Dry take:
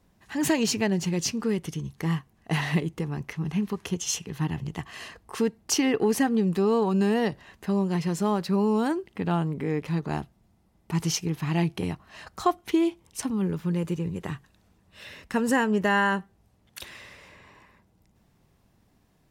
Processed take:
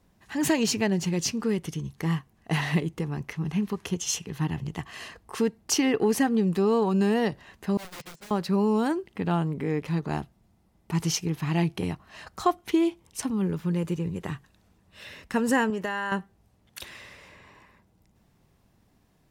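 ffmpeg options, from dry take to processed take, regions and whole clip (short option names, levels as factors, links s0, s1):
-filter_complex "[0:a]asettb=1/sr,asplit=3[s0][s1][s2];[s0]atrim=end=7.774[s3];[s1]atrim=start=7.77:end=8.31,asetpts=PTS-STARTPTS,afade=t=in:d=0.004:c=qsin,afade=t=out:st=0.536:d=0.004:c=qsin,highpass=180,lowpass=6500,aeval=exprs='(mod(26.6*val(0)+1,2)-1)/26.6':c=same,agate=range=0.0708:threshold=0.0251:ratio=16:release=100:detection=peak[s4];[s2]atrim=start=8.306[s5];[s3][s4]acrossfade=d=0.004:c1=hsin:c2=qsin[s6];[s6][s5]acrossfade=d=0.004:c1=qsin:c2=hsin,asettb=1/sr,asplit=3[s7][s8][s9];[s7]atrim=end=15.704[s10];[s8]atrim=start=15.7:end=16.12,asetpts=PTS-STARTPTS,afade=t=in:d=0.004:c=qsin,afade=t=out:st=0.416:d=0.004:c=qsin,lowshelf=f=240:g=-10.5,acompressor=threshold=0.0562:ratio=10:attack=3.2:release=140:knee=1:detection=peak[s11];[s9]atrim=start=16.116[s12];[s10][s11]acrossfade=d=0.004:c1=hsin:c2=qsin[s13];[s13][s12]acrossfade=d=0.004:c1=qsin:c2=hsin"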